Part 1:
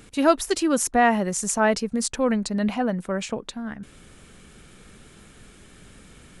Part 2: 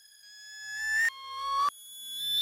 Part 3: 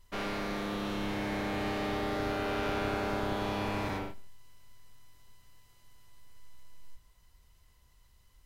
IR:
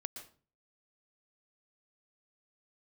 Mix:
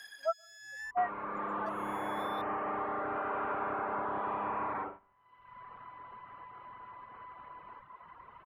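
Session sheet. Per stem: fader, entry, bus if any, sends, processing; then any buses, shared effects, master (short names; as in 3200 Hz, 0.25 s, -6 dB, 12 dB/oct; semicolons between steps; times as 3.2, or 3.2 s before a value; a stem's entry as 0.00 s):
-8.5 dB, 0.00 s, send -7.5 dB, HPF 810 Hz 12 dB/oct; spectral expander 4:1
-3.0 dB, 0.00 s, muted 0.91–1.66, no send, compressor, threshold -35 dBFS, peak gain reduction 10 dB; auto duck -11 dB, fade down 1.55 s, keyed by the first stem
-0.5 dB, 0.85 s, no send, Bessel low-pass 1400 Hz, order 6; bell 1100 Hz +13 dB 0.84 oct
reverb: on, RT60 0.40 s, pre-delay 0.111 s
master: reverb removal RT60 0.97 s; HPF 430 Hz 6 dB/oct; three-band squash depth 70%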